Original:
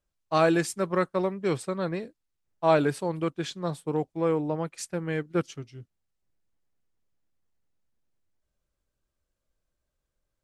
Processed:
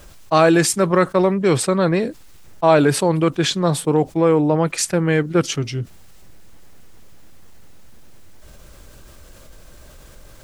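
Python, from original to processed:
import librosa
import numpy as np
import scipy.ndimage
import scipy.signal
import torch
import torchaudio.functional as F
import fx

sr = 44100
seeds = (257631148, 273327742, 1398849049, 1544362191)

y = fx.env_flatten(x, sr, amount_pct=50)
y = y * librosa.db_to_amplitude(7.0)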